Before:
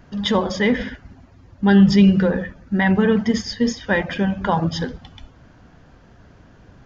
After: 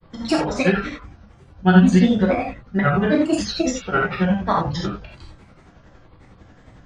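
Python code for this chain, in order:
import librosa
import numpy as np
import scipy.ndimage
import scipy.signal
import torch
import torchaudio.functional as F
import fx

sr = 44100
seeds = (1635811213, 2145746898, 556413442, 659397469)

y = fx.granulator(x, sr, seeds[0], grain_ms=100.0, per_s=11.0, spray_ms=16.0, spread_st=7)
y = fx.rev_gated(y, sr, seeds[1], gate_ms=110, shape='flat', drr_db=-2.5)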